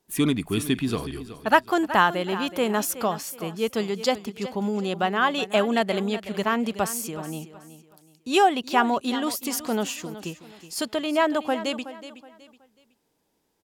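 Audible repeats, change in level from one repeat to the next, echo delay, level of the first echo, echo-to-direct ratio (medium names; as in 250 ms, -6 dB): 3, -10.0 dB, 372 ms, -14.0 dB, -13.5 dB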